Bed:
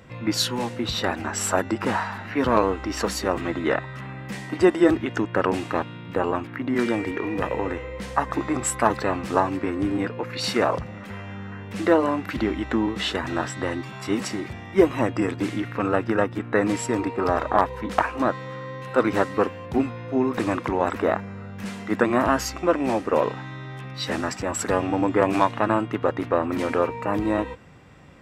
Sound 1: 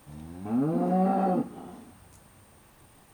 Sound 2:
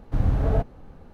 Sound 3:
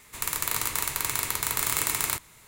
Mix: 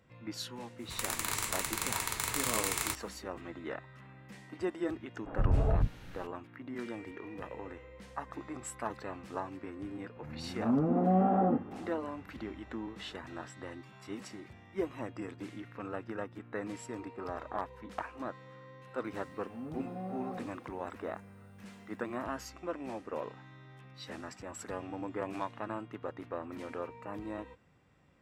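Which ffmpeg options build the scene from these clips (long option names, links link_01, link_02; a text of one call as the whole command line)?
ffmpeg -i bed.wav -i cue0.wav -i cue1.wav -i cue2.wav -filter_complex "[1:a]asplit=2[link_01][link_02];[0:a]volume=-17.5dB[link_03];[3:a]equalizer=frequency=14000:width_type=o:width=0.5:gain=-9[link_04];[2:a]acrossover=split=290|1700[link_05][link_06][link_07];[link_05]adelay=110[link_08];[link_07]adelay=540[link_09];[link_08][link_06][link_09]amix=inputs=3:normalize=0[link_10];[link_01]lowpass=frequency=1800:width=0.5412,lowpass=frequency=1800:width=1.3066[link_11];[link_04]atrim=end=2.47,asetpts=PTS-STARTPTS,volume=-4.5dB,afade=type=in:duration=0.05,afade=type=out:start_time=2.42:duration=0.05,adelay=770[link_12];[link_10]atrim=end=1.13,asetpts=PTS-STARTPTS,volume=-5.5dB,afade=type=in:duration=0.004:curve=hsin,afade=type=out:start_time=1.126:duration=0.004:curve=hsin,adelay=5140[link_13];[link_11]atrim=end=3.13,asetpts=PTS-STARTPTS,volume=-2dB,afade=type=in:duration=0.004:curve=hsin,afade=type=out:start_time=3.126:duration=0.004:curve=hsin,adelay=10150[link_14];[link_02]atrim=end=3.13,asetpts=PTS-STARTPTS,volume=-16.5dB,afade=type=in:duration=0.004:curve=hsin,afade=type=out:start_time=3.126:duration=0.004:curve=hsin,adelay=19040[link_15];[link_03][link_12][link_13][link_14][link_15]amix=inputs=5:normalize=0" out.wav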